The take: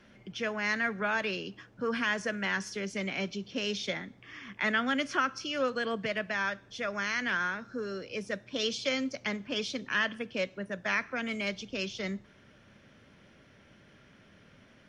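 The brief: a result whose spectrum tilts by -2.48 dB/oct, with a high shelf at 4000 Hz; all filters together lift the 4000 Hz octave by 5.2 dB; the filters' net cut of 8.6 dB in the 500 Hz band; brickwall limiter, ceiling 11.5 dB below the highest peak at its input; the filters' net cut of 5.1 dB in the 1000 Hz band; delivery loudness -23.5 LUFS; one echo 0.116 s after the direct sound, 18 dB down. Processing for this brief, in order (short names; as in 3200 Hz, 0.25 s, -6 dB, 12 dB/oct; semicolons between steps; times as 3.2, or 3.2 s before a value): bell 500 Hz -9 dB; bell 1000 Hz -6.5 dB; high shelf 4000 Hz +5 dB; bell 4000 Hz +5 dB; limiter -26.5 dBFS; echo 0.116 s -18 dB; gain +13 dB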